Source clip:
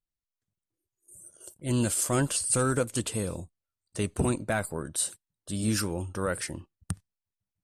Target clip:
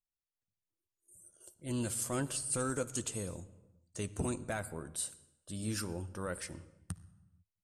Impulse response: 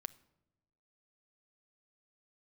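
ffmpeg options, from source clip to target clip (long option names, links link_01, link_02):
-filter_complex "[0:a]asettb=1/sr,asplit=3[link_01][link_02][link_03];[link_01]atrim=end=2.604[link_04];[link_02]atrim=start=2.6:end=4.6,asetpts=PTS-STARTPTS,afade=type=in:duration=0.004:curve=qsin,afade=type=out:start_time=1.996:duration=0.004:curve=qsin,equalizer=frequency=6700:width_type=o:width=0.35:gain=10.5[link_05];[link_03]atrim=start=4.596[link_06];[link_04][link_05]acrossfade=duration=0.004:curve1=hsin:curve2=qsin[link_07];[link_07][link_06]acrossfade=duration=0.004:curve1=qsin:curve2=hsin[link_08];[1:a]atrim=start_sample=2205,afade=type=out:start_time=0.33:duration=0.01,atrim=end_sample=14994,asetrate=24696,aresample=44100[link_09];[link_08][link_09]afir=irnorm=-1:irlink=0,volume=-8.5dB"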